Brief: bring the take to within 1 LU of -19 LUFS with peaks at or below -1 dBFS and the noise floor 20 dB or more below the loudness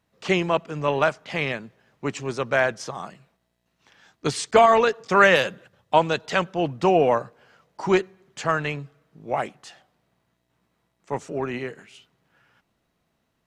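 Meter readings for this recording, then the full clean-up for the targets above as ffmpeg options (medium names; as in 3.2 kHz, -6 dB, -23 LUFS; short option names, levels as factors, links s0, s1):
loudness -22.5 LUFS; peak level -2.0 dBFS; loudness target -19.0 LUFS
-> -af "volume=1.5,alimiter=limit=0.891:level=0:latency=1"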